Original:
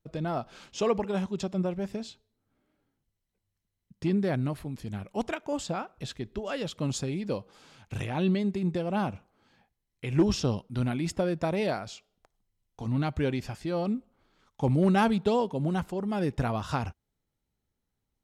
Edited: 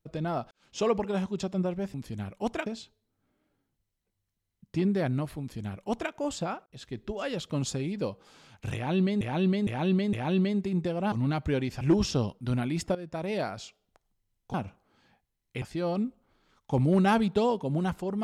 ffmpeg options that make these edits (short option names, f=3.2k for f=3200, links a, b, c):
-filter_complex "[0:a]asplit=13[a][b][c][d][e][f][g][h][i][j][k][l][m];[a]atrim=end=0.51,asetpts=PTS-STARTPTS,afade=t=out:st=0.506:d=0.004:c=hsin[n];[b]atrim=start=0.51:end=1.942,asetpts=PTS-STARTPTS,afade=t=in:d=0.27:c=qua[o];[c]atrim=start=4.678:end=5.402[p];[d]atrim=start=1.938:end=5.94,asetpts=PTS-STARTPTS,afade=t=out:st=3.998:d=0.004:c=hsin[q];[e]atrim=start=5.94:end=8.492,asetpts=PTS-STARTPTS,afade=t=in:d=0.32[r];[f]atrim=start=8.028:end=8.492[s];[g]atrim=start=8.028:end=8.492[t];[h]atrim=start=8.028:end=9.022[u];[i]atrim=start=12.828:end=13.522[v];[j]atrim=start=10.098:end=11.24,asetpts=PTS-STARTPTS,afade=t=out:st=1.138:d=0.004:c=hsin:silence=0.188365[w];[k]atrim=start=11.24:end=12.832,asetpts=PTS-STARTPTS,afade=t=in:d=0.58:silence=0.188365[x];[l]atrim=start=9.018:end=10.102[y];[m]atrim=start=13.518[z];[n][o]concat=n=2:v=0:a=1[aa];[aa][p]acrossfade=d=0.004:c1=hsin:c2=hsin[ab];[q][r]concat=n=2:v=0:a=1[ac];[ab][ac]acrossfade=d=0.004:c1=hsin:c2=hsin[ad];[ad][s]acrossfade=d=0.004:c1=hsin:c2=hsin[ae];[ae][t]acrossfade=d=0.004:c1=hsin:c2=hsin[af];[af][u]acrossfade=d=0.004:c1=hsin:c2=hsin[ag];[ag][v]acrossfade=d=0.004:c1=hsin:c2=hsin[ah];[w][x]concat=n=2:v=0:a=1[ai];[ah][ai]acrossfade=d=0.004:c1=hsin:c2=hsin[aj];[aj][y]acrossfade=d=0.004:c1=hsin:c2=hsin[ak];[ak][z]acrossfade=d=0.004:c1=hsin:c2=hsin"